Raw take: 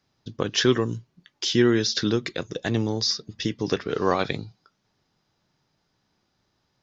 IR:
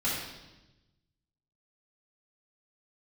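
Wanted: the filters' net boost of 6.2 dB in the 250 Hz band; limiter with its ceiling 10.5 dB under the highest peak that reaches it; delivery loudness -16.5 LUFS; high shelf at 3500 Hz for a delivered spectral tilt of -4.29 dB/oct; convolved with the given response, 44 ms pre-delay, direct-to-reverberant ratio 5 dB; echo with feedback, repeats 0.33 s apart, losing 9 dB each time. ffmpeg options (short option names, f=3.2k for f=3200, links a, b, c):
-filter_complex "[0:a]equalizer=f=250:t=o:g=8,highshelf=f=3.5k:g=7.5,alimiter=limit=-13.5dB:level=0:latency=1,aecho=1:1:330|660|990|1320:0.355|0.124|0.0435|0.0152,asplit=2[a][b];[1:a]atrim=start_sample=2205,adelay=44[c];[b][c]afir=irnorm=-1:irlink=0,volume=-13.5dB[d];[a][d]amix=inputs=2:normalize=0,volume=7dB"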